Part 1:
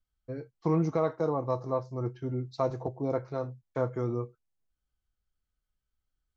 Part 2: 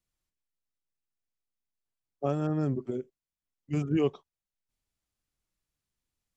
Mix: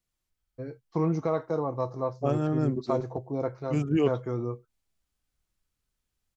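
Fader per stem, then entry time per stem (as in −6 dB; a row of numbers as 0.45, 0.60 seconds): 0.0, +2.0 decibels; 0.30, 0.00 seconds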